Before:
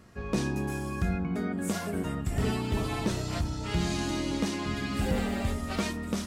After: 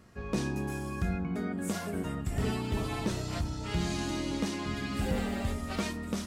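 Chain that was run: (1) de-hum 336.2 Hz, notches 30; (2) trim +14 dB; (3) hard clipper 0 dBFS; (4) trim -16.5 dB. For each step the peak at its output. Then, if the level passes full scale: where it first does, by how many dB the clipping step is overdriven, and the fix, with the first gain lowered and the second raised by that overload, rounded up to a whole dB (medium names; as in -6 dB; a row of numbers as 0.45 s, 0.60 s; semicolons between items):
-16.5 dBFS, -2.5 dBFS, -2.5 dBFS, -19.0 dBFS; nothing clips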